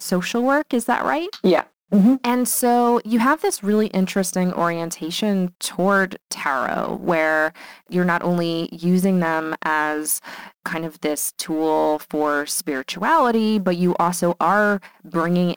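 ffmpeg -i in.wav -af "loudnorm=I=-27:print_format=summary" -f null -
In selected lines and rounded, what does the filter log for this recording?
Input Integrated:    -20.1 LUFS
Input True Peak:      -2.0 dBTP
Input LRA:             2.9 LU
Input Threshold:     -30.2 LUFS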